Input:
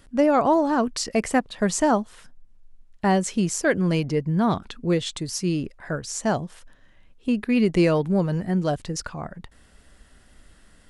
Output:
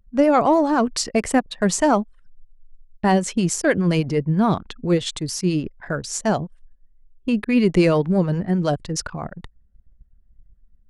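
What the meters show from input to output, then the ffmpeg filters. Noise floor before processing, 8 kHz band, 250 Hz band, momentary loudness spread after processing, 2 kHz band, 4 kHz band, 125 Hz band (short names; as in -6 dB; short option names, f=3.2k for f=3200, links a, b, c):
-55 dBFS, +3.0 dB, +3.0 dB, 11 LU, +2.0 dB, +3.0 dB, +3.0 dB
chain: -filter_complex "[0:a]anlmdn=0.251,acrossover=split=550[a][b];[a]aeval=exprs='val(0)*(1-0.5/2+0.5/2*cos(2*PI*9.5*n/s))':c=same[c];[b]aeval=exprs='val(0)*(1-0.5/2-0.5/2*cos(2*PI*9.5*n/s))':c=same[d];[c][d]amix=inputs=2:normalize=0,acontrast=35"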